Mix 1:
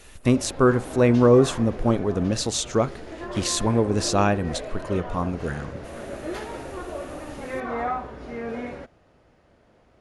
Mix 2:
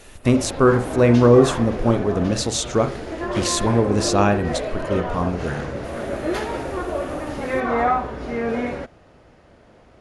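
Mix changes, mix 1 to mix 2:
speech: send +11.5 dB; background +8.0 dB

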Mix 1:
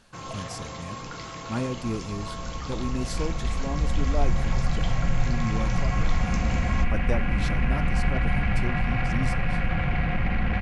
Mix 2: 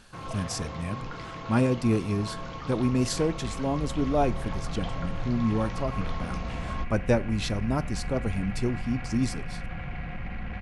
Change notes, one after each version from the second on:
speech +6.0 dB; first sound: add distance through air 190 m; second sound -10.5 dB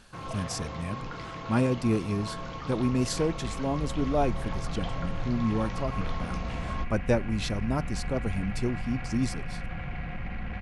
speech: send -11.5 dB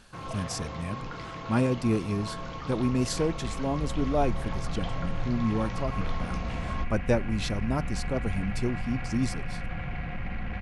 second sound: send on

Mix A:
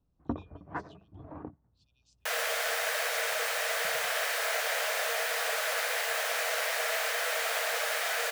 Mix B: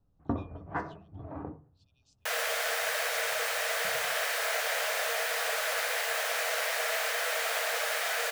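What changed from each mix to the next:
first sound: send on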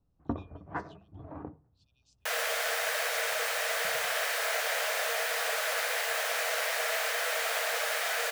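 first sound: send -9.5 dB

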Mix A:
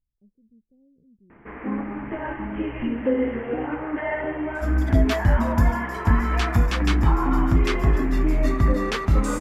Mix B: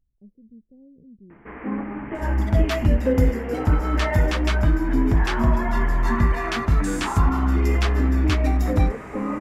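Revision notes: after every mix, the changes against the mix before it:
speech +9.5 dB; second sound: entry -2.40 s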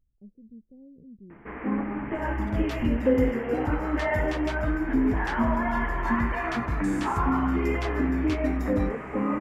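second sound -11.0 dB

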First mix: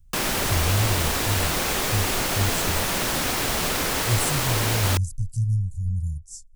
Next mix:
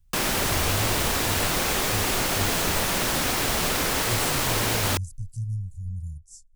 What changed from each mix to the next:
speech -7.0 dB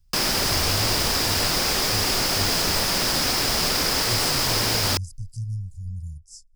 master: add peaking EQ 5 kHz +13 dB 0.32 oct

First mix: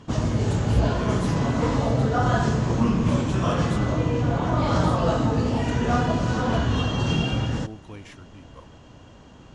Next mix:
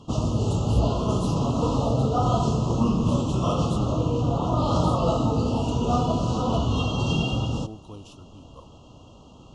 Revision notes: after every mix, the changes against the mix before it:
master: add Chebyshev band-stop 1.3–2.7 kHz, order 4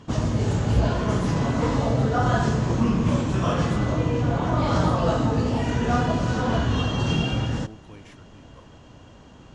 speech -5.0 dB; master: remove Chebyshev band-stop 1.3–2.7 kHz, order 4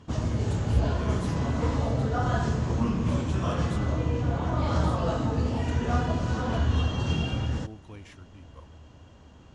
background -6.0 dB; master: add peaking EQ 78 Hz +13 dB 0.3 oct

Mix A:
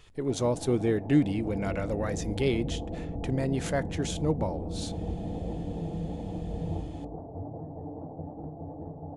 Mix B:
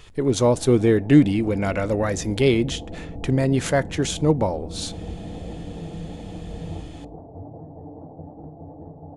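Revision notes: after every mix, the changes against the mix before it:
speech +9.0 dB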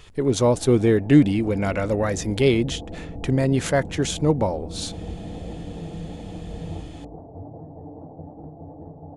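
speech: send off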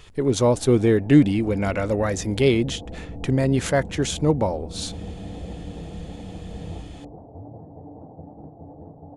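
reverb: off

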